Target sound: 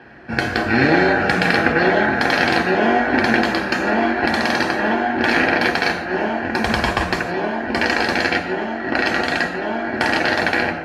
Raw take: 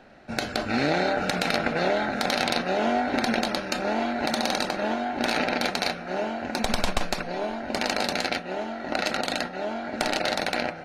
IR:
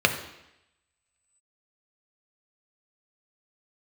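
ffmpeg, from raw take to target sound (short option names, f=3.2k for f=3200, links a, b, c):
-filter_complex "[1:a]atrim=start_sample=2205,afade=t=out:st=0.17:d=0.01,atrim=end_sample=7938,asetrate=29988,aresample=44100[a];[0:a][a]afir=irnorm=-1:irlink=0,volume=-9dB"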